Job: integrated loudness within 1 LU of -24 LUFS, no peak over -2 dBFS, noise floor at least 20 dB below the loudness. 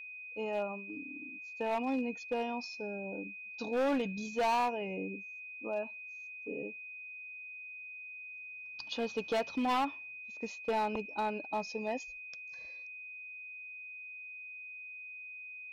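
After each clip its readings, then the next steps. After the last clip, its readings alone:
clipped 1.5%; flat tops at -27.0 dBFS; steady tone 2500 Hz; tone level -44 dBFS; loudness -37.5 LUFS; peak -27.0 dBFS; loudness target -24.0 LUFS
-> clip repair -27 dBFS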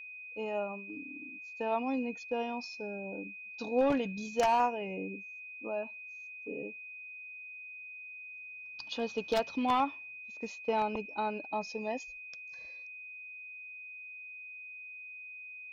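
clipped 0.0%; steady tone 2500 Hz; tone level -44 dBFS
-> notch 2500 Hz, Q 30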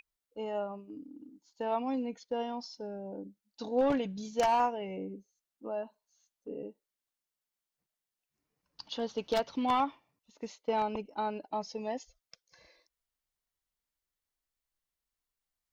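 steady tone none; loudness -34.5 LUFS; peak -17.5 dBFS; loudness target -24.0 LUFS
-> gain +10.5 dB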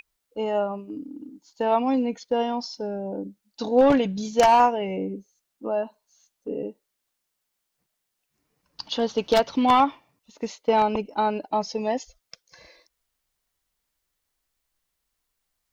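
loudness -24.0 LUFS; peak -7.0 dBFS; noise floor -80 dBFS

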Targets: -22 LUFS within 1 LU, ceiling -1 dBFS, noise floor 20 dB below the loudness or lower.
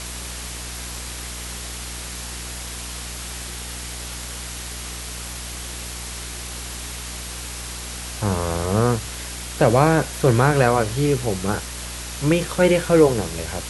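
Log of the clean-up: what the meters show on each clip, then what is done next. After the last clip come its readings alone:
hum 60 Hz; harmonics up to 480 Hz; hum level -34 dBFS; noise floor -32 dBFS; noise floor target -44 dBFS; loudness -23.5 LUFS; peak -2.0 dBFS; loudness target -22.0 LUFS
-> de-hum 60 Hz, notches 8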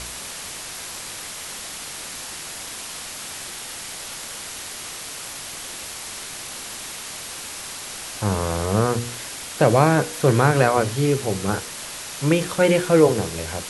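hum none; noise floor -35 dBFS; noise floor target -44 dBFS
-> noise print and reduce 9 dB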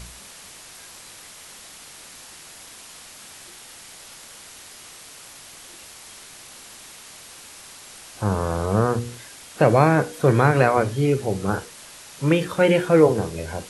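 noise floor -44 dBFS; loudness -20.0 LUFS; peak -2.0 dBFS; loudness target -22.0 LUFS
-> gain -2 dB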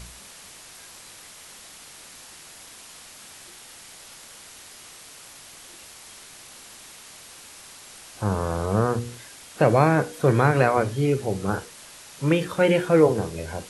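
loudness -22.0 LUFS; peak -4.0 dBFS; noise floor -46 dBFS

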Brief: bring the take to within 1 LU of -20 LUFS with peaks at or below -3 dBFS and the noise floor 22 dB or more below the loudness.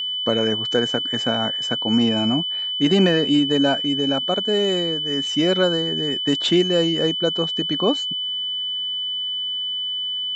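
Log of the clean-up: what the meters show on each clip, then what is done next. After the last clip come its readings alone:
steady tone 3000 Hz; tone level -23 dBFS; loudness -20.0 LUFS; peak -6.5 dBFS; loudness target -20.0 LUFS
-> notch 3000 Hz, Q 30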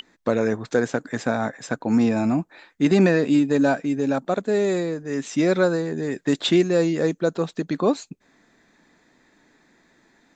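steady tone none; loudness -22.0 LUFS; peak -7.5 dBFS; loudness target -20.0 LUFS
-> gain +2 dB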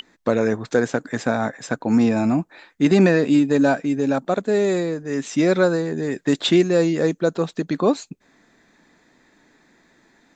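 loudness -20.0 LUFS; peak -5.5 dBFS; noise floor -62 dBFS

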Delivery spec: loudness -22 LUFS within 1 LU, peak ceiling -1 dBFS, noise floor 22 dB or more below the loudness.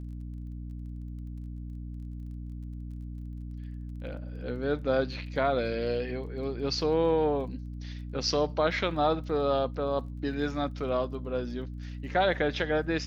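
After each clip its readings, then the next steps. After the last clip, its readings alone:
ticks 23/s; hum 60 Hz; harmonics up to 300 Hz; hum level -36 dBFS; loudness -31.5 LUFS; peak -13.5 dBFS; loudness target -22.0 LUFS
-> de-click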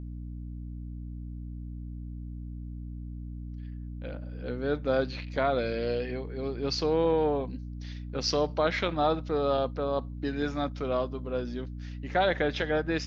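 ticks 0/s; hum 60 Hz; harmonics up to 300 Hz; hum level -36 dBFS
-> de-hum 60 Hz, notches 5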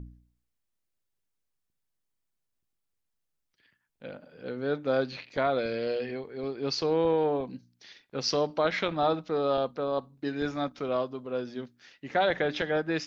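hum none; loudness -29.5 LUFS; peak -13.0 dBFS; loudness target -22.0 LUFS
-> gain +7.5 dB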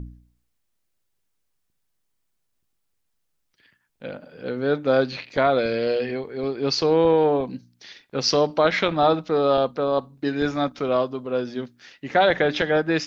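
loudness -22.0 LUFS; peak -5.5 dBFS; noise floor -73 dBFS

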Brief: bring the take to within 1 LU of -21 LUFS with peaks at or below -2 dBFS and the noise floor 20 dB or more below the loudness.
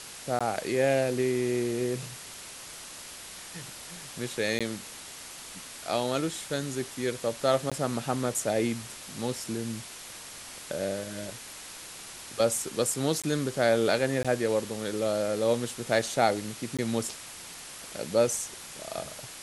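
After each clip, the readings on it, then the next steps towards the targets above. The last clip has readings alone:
dropouts 6; longest dropout 16 ms; noise floor -44 dBFS; noise floor target -50 dBFS; loudness -29.5 LUFS; peak -9.5 dBFS; loudness target -21.0 LUFS
-> interpolate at 0.39/4.59/7.7/13.22/14.23/16.77, 16 ms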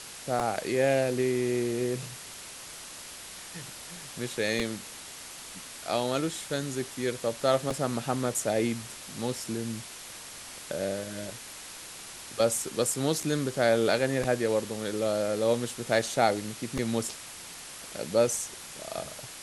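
dropouts 0; noise floor -44 dBFS; noise floor target -50 dBFS
-> denoiser 6 dB, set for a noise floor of -44 dBFS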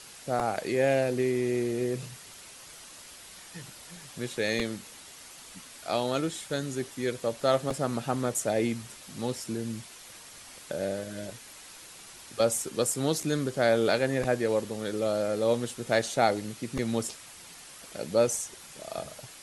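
noise floor -48 dBFS; noise floor target -50 dBFS
-> denoiser 6 dB, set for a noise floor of -48 dBFS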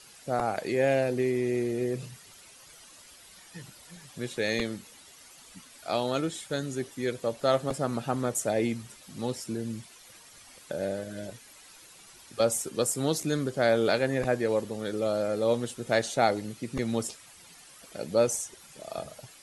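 noise floor -53 dBFS; loudness -29.5 LUFS; peak -9.5 dBFS; loudness target -21.0 LUFS
-> gain +8.5 dB; limiter -2 dBFS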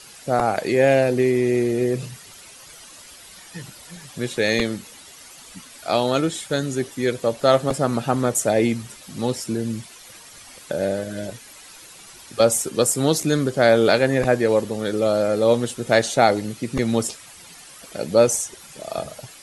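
loudness -21.0 LUFS; peak -2.0 dBFS; noise floor -44 dBFS

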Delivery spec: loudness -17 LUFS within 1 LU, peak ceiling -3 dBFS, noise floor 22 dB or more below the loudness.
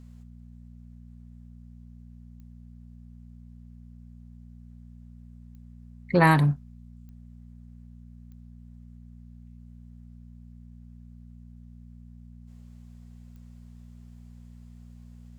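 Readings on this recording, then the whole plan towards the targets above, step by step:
clicks 5; hum 60 Hz; harmonics up to 240 Hz; hum level -45 dBFS; loudness -22.5 LUFS; peak -6.5 dBFS; loudness target -17.0 LUFS
-> de-click; de-hum 60 Hz, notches 4; gain +5.5 dB; limiter -3 dBFS

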